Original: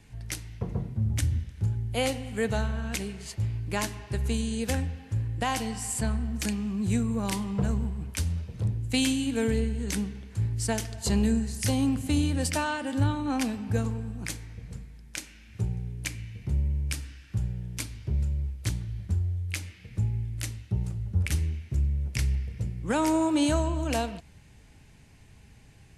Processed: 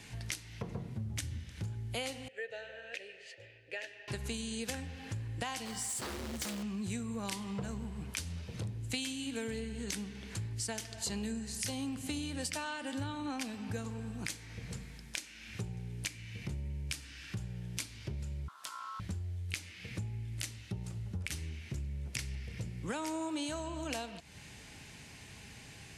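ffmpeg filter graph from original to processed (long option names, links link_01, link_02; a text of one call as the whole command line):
ffmpeg -i in.wav -filter_complex "[0:a]asettb=1/sr,asplit=3[link_01][link_02][link_03];[link_01]atrim=end=2.284[link_04];[link_02]atrim=start=2.28:end=4.08,asetpts=PTS-STARTPTS,afade=type=in:duration=0.004:curve=qsin,afade=type=out:start_time=1.796:duration=0.004:curve=qsin,asplit=3[link_05][link_06][link_07];[link_05]bandpass=frequency=530:width_type=q:width=8,volume=0dB[link_08];[link_06]bandpass=frequency=1840:width_type=q:width=8,volume=-6dB[link_09];[link_07]bandpass=frequency=2480:width_type=q:width=8,volume=-9dB[link_10];[link_08][link_09][link_10]amix=inputs=3:normalize=0,equalizer=frequency=210:width_type=o:width=0.85:gain=-14[link_11];[link_03]atrim=start=4.076[link_12];[link_04][link_11]acrossfade=duration=0.004:curve1=hsin:curve2=qsin[link_13];[link_13][link_12]acrossfade=duration=0.004:curve1=qsin:curve2=hsin,asettb=1/sr,asplit=3[link_14][link_15][link_16];[link_14]atrim=end=5.654[link_17];[link_15]atrim=start=5.65:end=6.63,asetpts=PTS-STARTPTS,afade=type=in:duration=0.004:curve=qsin,afade=type=out:start_time=0.976:duration=0.004:curve=qsin,asuperstop=centerf=2600:order=12:qfactor=5.6,acrusher=bits=4:mode=log:mix=0:aa=0.000001,aeval=exprs='0.0422*(abs(mod(val(0)/0.0422+3,4)-2)-1)':channel_layout=same[link_18];[link_16]atrim=start=6.626[link_19];[link_17][link_18]acrossfade=duration=0.004:curve1=hsin:curve2=qsin[link_20];[link_20][link_19]acrossfade=duration=0.004:curve1=qsin:curve2=hsin,asettb=1/sr,asplit=3[link_21][link_22][link_23];[link_21]atrim=end=18.484[link_24];[link_22]atrim=start=18.48:end=19,asetpts=PTS-STARTPTS,afade=type=in:duration=0.004:curve=qsin,afade=type=out:start_time=0.516:duration=0.004:curve=qsin,highpass=frequency=140:width=0.5412,highpass=frequency=140:width=1.3066,acompressor=threshold=-43dB:ratio=12:attack=3.2:release=140:knee=1:detection=peak,aeval=exprs='val(0)*sin(2*PI*1200*n/s)':channel_layout=same[link_25];[link_23]atrim=start=18.996[link_26];[link_24][link_25]acrossfade=duration=0.004:curve1=hsin:curve2=qsin[link_27];[link_27][link_26]acrossfade=duration=0.004:curve1=qsin:curve2=hsin,highpass=frequency=150:poles=1,equalizer=frequency=4300:width_type=o:width=3:gain=6.5,acompressor=threshold=-43dB:ratio=4,volume=4.5dB" out.wav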